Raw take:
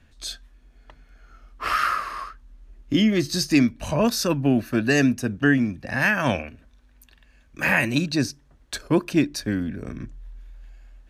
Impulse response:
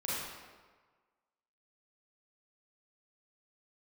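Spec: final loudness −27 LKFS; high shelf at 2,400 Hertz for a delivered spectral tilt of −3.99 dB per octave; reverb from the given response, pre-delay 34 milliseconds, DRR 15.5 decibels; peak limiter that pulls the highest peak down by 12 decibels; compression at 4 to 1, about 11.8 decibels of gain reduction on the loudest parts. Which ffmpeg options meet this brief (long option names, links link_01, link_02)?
-filter_complex "[0:a]highshelf=frequency=2400:gain=6.5,acompressor=threshold=-28dB:ratio=4,alimiter=level_in=2.5dB:limit=-24dB:level=0:latency=1,volume=-2.5dB,asplit=2[link_01][link_02];[1:a]atrim=start_sample=2205,adelay=34[link_03];[link_02][link_03]afir=irnorm=-1:irlink=0,volume=-20.5dB[link_04];[link_01][link_04]amix=inputs=2:normalize=0,volume=9.5dB"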